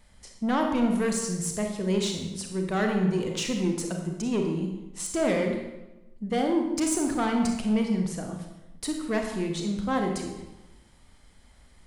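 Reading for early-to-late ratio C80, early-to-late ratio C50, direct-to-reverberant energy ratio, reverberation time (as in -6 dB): 6.5 dB, 4.5 dB, 2.5 dB, 1.0 s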